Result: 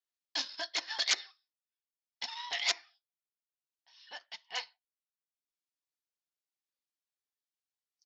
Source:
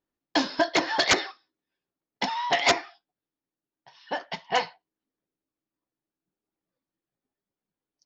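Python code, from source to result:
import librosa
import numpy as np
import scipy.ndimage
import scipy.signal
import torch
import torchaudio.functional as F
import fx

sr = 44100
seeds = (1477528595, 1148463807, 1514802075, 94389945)

y = fx.bandpass_q(x, sr, hz=5000.0, q=0.95)
y = fx.transient(y, sr, attack_db=-6, sustain_db=-10)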